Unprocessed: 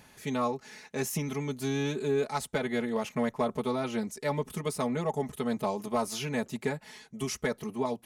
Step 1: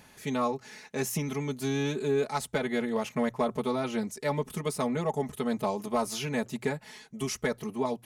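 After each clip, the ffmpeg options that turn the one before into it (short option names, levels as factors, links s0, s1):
-af "bandreject=f=60:t=h:w=6,bandreject=f=120:t=h:w=6,volume=1.12"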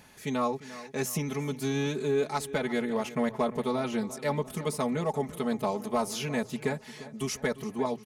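-filter_complex "[0:a]asplit=2[s0][s1];[s1]adelay=348,lowpass=f=4800:p=1,volume=0.158,asplit=2[s2][s3];[s3]adelay=348,lowpass=f=4800:p=1,volume=0.55,asplit=2[s4][s5];[s5]adelay=348,lowpass=f=4800:p=1,volume=0.55,asplit=2[s6][s7];[s7]adelay=348,lowpass=f=4800:p=1,volume=0.55,asplit=2[s8][s9];[s9]adelay=348,lowpass=f=4800:p=1,volume=0.55[s10];[s0][s2][s4][s6][s8][s10]amix=inputs=6:normalize=0"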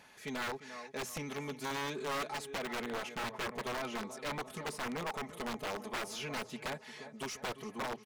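-filter_complex "[0:a]aeval=exprs='(mod(14.1*val(0)+1,2)-1)/14.1':c=same,asplit=2[s0][s1];[s1]highpass=f=720:p=1,volume=4.47,asoftclip=type=tanh:threshold=0.075[s2];[s0][s2]amix=inputs=2:normalize=0,lowpass=f=3700:p=1,volume=0.501,volume=0.376"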